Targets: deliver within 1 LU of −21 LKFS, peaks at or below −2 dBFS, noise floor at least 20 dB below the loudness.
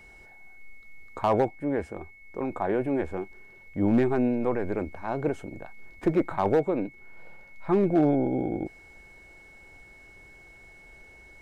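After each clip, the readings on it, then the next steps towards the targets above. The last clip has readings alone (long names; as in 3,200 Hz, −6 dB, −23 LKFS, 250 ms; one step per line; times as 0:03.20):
share of clipped samples 0.3%; peaks flattened at −15.0 dBFS; interfering tone 2,200 Hz; level of the tone −50 dBFS; integrated loudness −27.0 LKFS; sample peak −15.0 dBFS; target loudness −21.0 LKFS
→ clipped peaks rebuilt −15 dBFS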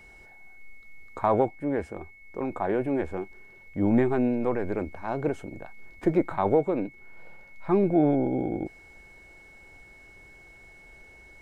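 share of clipped samples 0.0%; interfering tone 2,200 Hz; level of the tone −50 dBFS
→ notch filter 2,200 Hz, Q 30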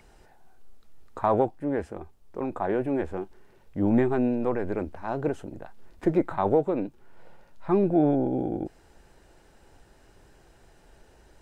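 interfering tone none found; integrated loudness −27.0 LKFS; sample peak −10.5 dBFS; target loudness −21.0 LKFS
→ level +6 dB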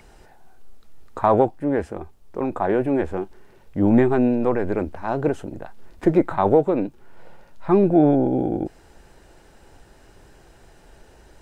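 integrated loudness −21.0 LKFS; sample peak −4.5 dBFS; background noise floor −52 dBFS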